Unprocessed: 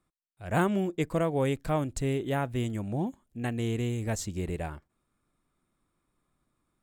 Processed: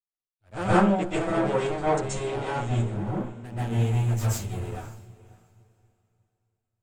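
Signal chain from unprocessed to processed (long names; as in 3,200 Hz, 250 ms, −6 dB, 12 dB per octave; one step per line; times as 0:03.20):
lower of the sound and its delayed copy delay 9.3 ms
0:00.52–0:02.88: Butterworth low-pass 9,100 Hz 72 dB per octave
feedback delay with all-pass diffusion 562 ms, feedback 42%, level −12 dB
convolution reverb RT60 0.45 s, pre-delay 118 ms, DRR −8 dB
multiband upward and downward expander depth 70%
level −5.5 dB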